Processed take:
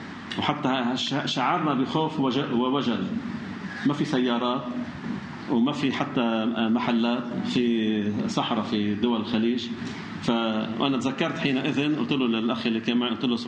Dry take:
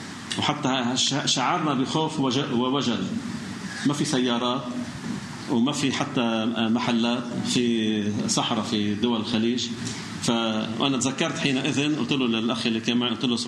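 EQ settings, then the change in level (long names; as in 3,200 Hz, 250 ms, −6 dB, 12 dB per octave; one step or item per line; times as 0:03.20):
low-pass filter 2,900 Hz 12 dB per octave
parametric band 120 Hz −11 dB 0.21 octaves
0.0 dB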